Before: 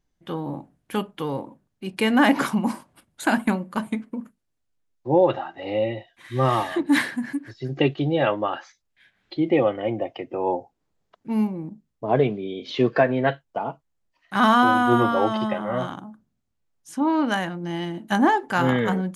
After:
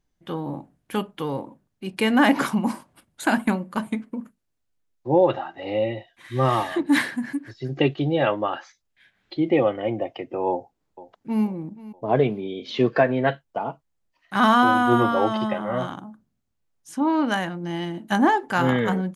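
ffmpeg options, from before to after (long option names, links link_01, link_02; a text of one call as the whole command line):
ffmpeg -i in.wav -filter_complex "[0:a]asplit=2[link_01][link_02];[link_02]afade=type=in:start_time=10.49:duration=0.01,afade=type=out:start_time=11.44:duration=0.01,aecho=0:1:480|960|1440|1920:0.133352|0.0666761|0.033338|0.016669[link_03];[link_01][link_03]amix=inputs=2:normalize=0" out.wav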